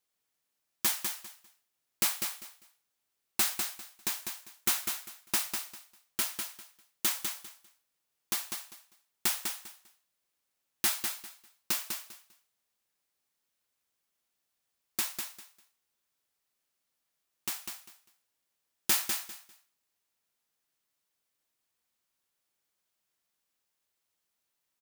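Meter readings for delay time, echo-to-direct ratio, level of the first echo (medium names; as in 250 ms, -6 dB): 199 ms, -6.0 dB, -6.0 dB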